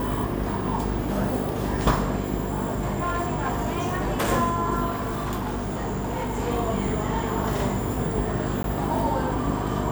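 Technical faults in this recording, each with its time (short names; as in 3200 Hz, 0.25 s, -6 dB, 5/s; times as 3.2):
buzz 50 Hz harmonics 9 -30 dBFS
2.64–4.3 clipped -20.5 dBFS
4.9–6.4 clipped -24 dBFS
8.63–8.64 gap 12 ms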